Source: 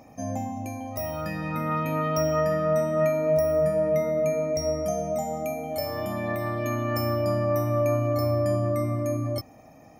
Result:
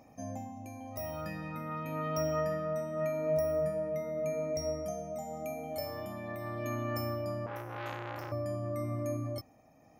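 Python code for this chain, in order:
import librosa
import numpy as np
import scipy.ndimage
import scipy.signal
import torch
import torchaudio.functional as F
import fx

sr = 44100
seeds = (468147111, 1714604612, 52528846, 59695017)

y = x * (1.0 - 0.39 / 2.0 + 0.39 / 2.0 * np.cos(2.0 * np.pi * 0.88 * (np.arange(len(x)) / sr)))
y = fx.transformer_sat(y, sr, knee_hz=1900.0, at=(7.46, 8.32))
y = y * librosa.db_to_amplitude(-7.5)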